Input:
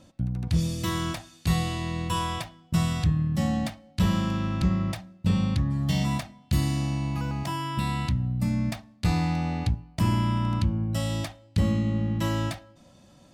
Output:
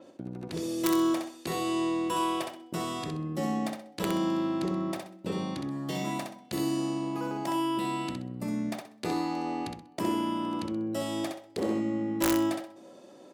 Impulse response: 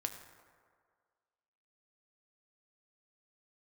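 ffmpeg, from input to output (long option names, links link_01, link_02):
-filter_complex "[0:a]highshelf=frequency=2000:gain=-7.5,asplit=2[link_01][link_02];[link_02]acompressor=threshold=-34dB:ratio=8,volume=0.5dB[link_03];[link_01][link_03]amix=inputs=2:normalize=0,asettb=1/sr,asplit=3[link_04][link_05][link_06];[link_04]atrim=end=11.124[link_07];[link_05]atrim=start=11.12:end=11.74,asetpts=PTS-STARTPTS,afade=type=in:duration=0.004:curve=qsin,afade=type=out:start_time=0.616:duration=0.004:curve=qsin,volume=19.5dB,asoftclip=hard,volume=-19.5dB[link_08];[link_06]atrim=start=11.736[link_09];[link_07][link_08]acrossfade=duration=0.004:curve1=hsin:curve2=qsin[link_10];[link_10][link_09]acrossfade=duration=0.004:curve1=qsin:curve2=hsin,highpass=frequency=380:width_type=q:width=3.5,aeval=exprs='(mod(5.96*val(0)+1,2)-1)/5.96':channel_layout=same,aecho=1:1:64|128|192|256:0.562|0.152|0.041|0.0111,adynamicequalizer=threshold=0.00282:dfrequency=6200:dqfactor=0.7:tfrequency=6200:tqfactor=0.7:attack=5:release=100:ratio=0.375:range=3:mode=boostabove:tftype=highshelf,volume=-3.5dB"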